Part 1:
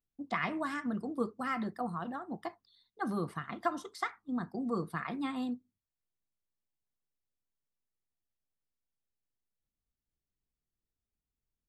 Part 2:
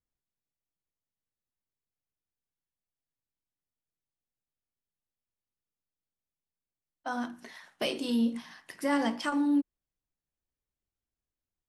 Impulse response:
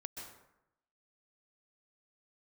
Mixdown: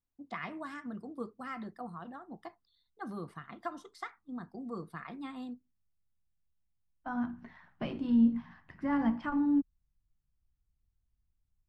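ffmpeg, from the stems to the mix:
-filter_complex "[0:a]highshelf=f=8200:g=-5.5,volume=0.473[s0];[1:a]asubboost=boost=8.5:cutoff=130,lowpass=1300,equalizer=f=520:t=o:w=0.8:g=-7,volume=1[s1];[s0][s1]amix=inputs=2:normalize=0"

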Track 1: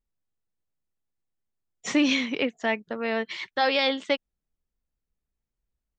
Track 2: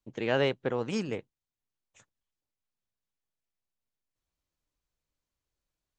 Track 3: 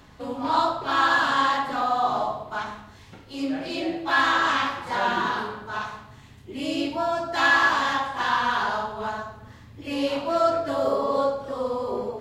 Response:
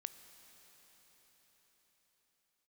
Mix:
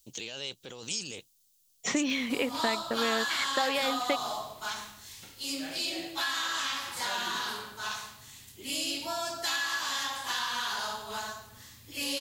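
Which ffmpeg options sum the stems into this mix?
-filter_complex "[0:a]acompressor=threshold=0.0355:ratio=6,volume=1.33[s0];[1:a]acompressor=threshold=0.0316:ratio=6,alimiter=level_in=2.99:limit=0.0631:level=0:latency=1:release=11,volume=0.335,aexciter=amount=7.3:drive=5.1:freq=2800,volume=0.668[s1];[2:a]crystalizer=i=4.5:c=0,adelay=2100,volume=0.282[s2];[s1][s2]amix=inputs=2:normalize=0,highshelf=f=2600:g=11.5,acompressor=threshold=0.0355:ratio=6,volume=1[s3];[s0][s3]amix=inputs=2:normalize=0"

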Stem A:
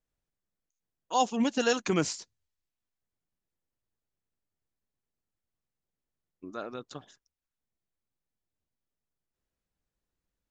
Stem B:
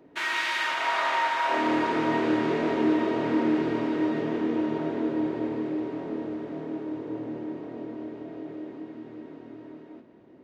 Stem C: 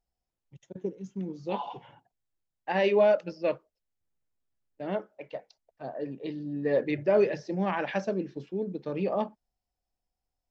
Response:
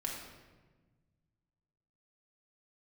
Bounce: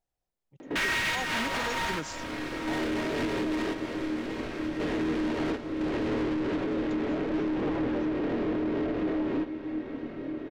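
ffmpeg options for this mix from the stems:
-filter_complex "[0:a]volume=0.631[s0];[1:a]lowshelf=f=120:g=9.5,asplit=2[s1][s2];[s2]highpass=f=720:p=1,volume=70.8,asoftclip=type=tanh:threshold=0.266[s3];[s1][s3]amix=inputs=2:normalize=0,lowpass=f=1800:p=1,volume=0.501,equalizer=f=910:t=o:w=1.7:g=-8,adelay=600,volume=1.12,asplit=2[s4][s5];[s5]volume=0.178[s6];[2:a]equalizer=f=570:t=o:w=2.1:g=8.5,alimiter=limit=0.141:level=0:latency=1:release=28,volume=0.562,asplit=2[s7][s8];[s8]apad=whole_len=486676[s9];[s4][s9]sidechaingate=range=0.0224:threshold=0.002:ratio=16:detection=peak[s10];[s10][s7]amix=inputs=2:normalize=0,tremolo=f=4.3:d=0.43,alimiter=limit=0.0841:level=0:latency=1:release=66,volume=1[s11];[3:a]atrim=start_sample=2205[s12];[s6][s12]afir=irnorm=-1:irlink=0[s13];[s0][s11][s13]amix=inputs=3:normalize=0,alimiter=limit=0.0794:level=0:latency=1:release=316"

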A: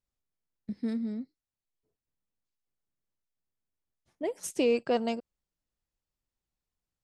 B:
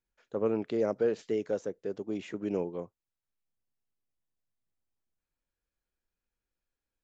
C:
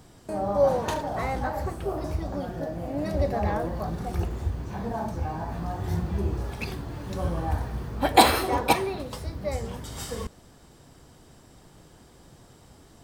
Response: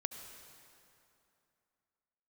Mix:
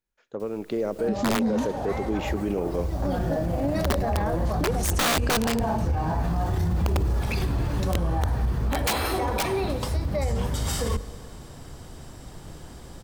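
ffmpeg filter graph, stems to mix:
-filter_complex "[0:a]equalizer=f=880:w=0.72:g=-5,acompressor=mode=upward:threshold=0.00891:ratio=2.5,adelay=400,volume=1.41,asplit=2[s0][s1];[s1]volume=0.299[s2];[1:a]acompressor=threshold=0.0316:ratio=6,volume=0.891,asplit=3[s3][s4][s5];[s4]volume=0.355[s6];[2:a]lowshelf=f=88:g=9.5,bandreject=f=50:t=h:w=6,bandreject=f=100:t=h:w=6,bandreject=f=150:t=h:w=6,bandreject=f=200:t=h:w=6,bandreject=f=250:t=h:w=6,bandreject=f=300:t=h:w=6,bandreject=f=350:t=h:w=6,bandreject=f=400:t=h:w=6,bandreject=f=450:t=h:w=6,acompressor=threshold=0.0501:ratio=2,adelay=700,volume=0.631,asplit=2[s7][s8];[s8]volume=0.376[s9];[s5]apad=whole_len=605724[s10];[s7][s10]sidechaincompress=threshold=0.00126:ratio=8:attack=16:release=155[s11];[3:a]atrim=start_sample=2205[s12];[s2][s6][s9]amix=inputs=3:normalize=0[s13];[s13][s12]afir=irnorm=-1:irlink=0[s14];[s0][s3][s11][s14]amix=inputs=4:normalize=0,dynaudnorm=f=330:g=5:m=2.99,aeval=exprs='(mod(3.35*val(0)+1,2)-1)/3.35':c=same,alimiter=limit=0.133:level=0:latency=1:release=25"

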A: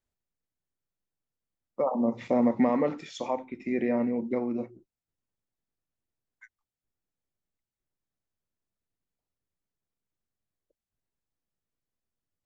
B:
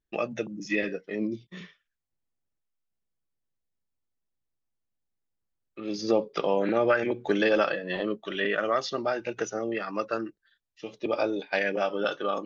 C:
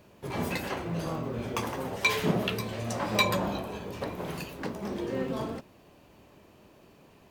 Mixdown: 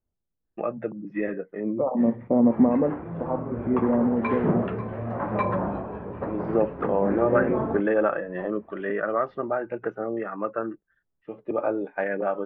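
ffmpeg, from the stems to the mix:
-filter_complex "[0:a]tiltshelf=f=890:g=7.5,volume=0.891[s0];[1:a]adelay=450,volume=1.19[s1];[2:a]dynaudnorm=f=120:g=21:m=3.76,adelay=2200,volume=0.562[s2];[s0][s1][s2]amix=inputs=3:normalize=0,lowpass=f=1600:w=0.5412,lowpass=f=1600:w=1.3066"

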